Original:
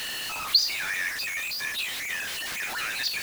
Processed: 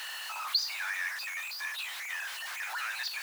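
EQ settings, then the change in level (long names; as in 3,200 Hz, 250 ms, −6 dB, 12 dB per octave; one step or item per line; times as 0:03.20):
high-pass with resonance 900 Hz, resonance Q 2.1
parametric band 1,500 Hz +3.5 dB 0.55 octaves
−8.5 dB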